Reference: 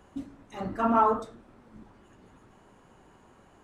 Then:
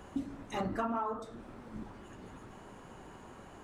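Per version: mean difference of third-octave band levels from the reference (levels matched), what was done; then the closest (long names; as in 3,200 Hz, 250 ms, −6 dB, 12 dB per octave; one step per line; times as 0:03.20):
11.5 dB: downward compressor 16 to 1, threshold −37 dBFS, peak gain reduction 20 dB
level +6 dB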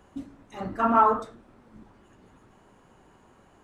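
2.0 dB: dynamic equaliser 1,500 Hz, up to +5 dB, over −40 dBFS, Q 0.9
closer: second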